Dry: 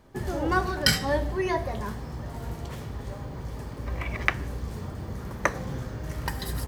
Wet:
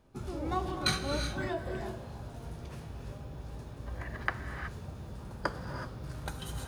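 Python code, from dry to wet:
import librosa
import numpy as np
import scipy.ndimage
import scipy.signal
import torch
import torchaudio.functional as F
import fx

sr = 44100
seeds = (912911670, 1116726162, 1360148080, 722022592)

y = fx.formant_shift(x, sr, semitones=-4)
y = fx.rev_gated(y, sr, seeds[0], gate_ms=400, shape='rising', drr_db=6.0)
y = F.gain(torch.from_numpy(y), -8.0).numpy()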